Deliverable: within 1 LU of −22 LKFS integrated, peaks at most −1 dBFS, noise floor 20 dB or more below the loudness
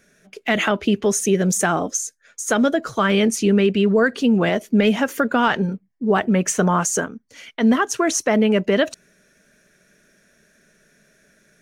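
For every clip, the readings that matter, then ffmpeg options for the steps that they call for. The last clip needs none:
integrated loudness −19.5 LKFS; sample peak −6.0 dBFS; target loudness −22.0 LKFS
→ -af "volume=-2.5dB"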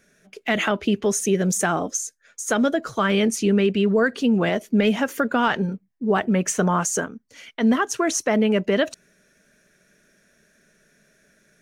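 integrated loudness −22.0 LKFS; sample peak −8.5 dBFS; background noise floor −63 dBFS

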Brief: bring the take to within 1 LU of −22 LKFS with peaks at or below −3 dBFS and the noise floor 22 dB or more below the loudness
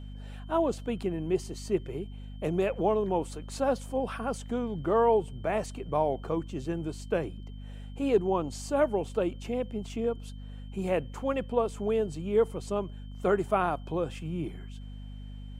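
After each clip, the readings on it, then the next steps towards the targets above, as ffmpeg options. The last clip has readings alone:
mains hum 50 Hz; hum harmonics up to 250 Hz; level of the hum −39 dBFS; interfering tone 3,100 Hz; level of the tone −60 dBFS; integrated loudness −30.5 LKFS; sample peak −13.0 dBFS; target loudness −22.0 LKFS
→ -af "bandreject=frequency=50:width_type=h:width=4,bandreject=frequency=100:width_type=h:width=4,bandreject=frequency=150:width_type=h:width=4,bandreject=frequency=200:width_type=h:width=4,bandreject=frequency=250:width_type=h:width=4"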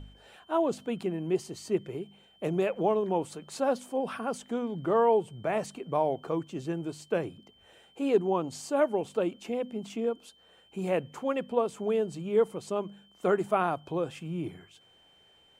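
mains hum none found; interfering tone 3,100 Hz; level of the tone −60 dBFS
→ -af "bandreject=frequency=3100:width=30"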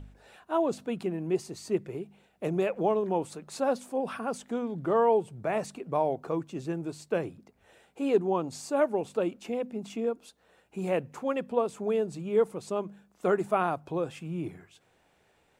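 interfering tone none found; integrated loudness −30.5 LKFS; sample peak −13.0 dBFS; target loudness −22.0 LKFS
→ -af "volume=8.5dB"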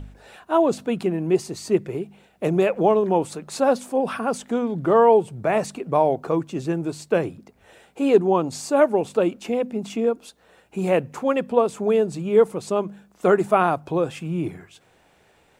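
integrated loudness −22.0 LKFS; sample peak −4.5 dBFS; background noise floor −59 dBFS

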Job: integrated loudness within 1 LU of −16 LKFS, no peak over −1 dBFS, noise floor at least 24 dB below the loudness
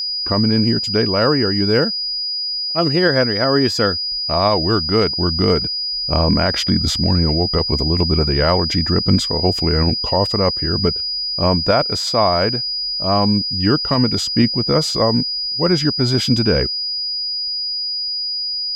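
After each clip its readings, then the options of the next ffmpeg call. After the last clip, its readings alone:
interfering tone 4,900 Hz; level of the tone −20 dBFS; integrated loudness −16.5 LKFS; sample peak −2.0 dBFS; target loudness −16.0 LKFS
→ -af "bandreject=frequency=4900:width=30"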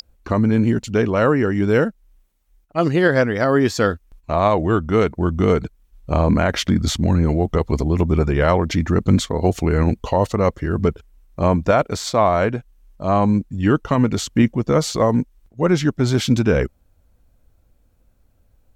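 interfering tone none found; integrated loudness −19.0 LKFS; sample peak −3.0 dBFS; target loudness −16.0 LKFS
→ -af "volume=3dB,alimiter=limit=-1dB:level=0:latency=1"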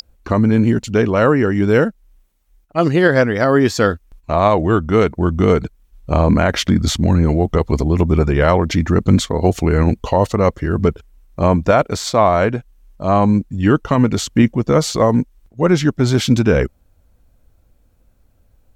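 integrated loudness −16.0 LKFS; sample peak −1.0 dBFS; background noise floor −56 dBFS

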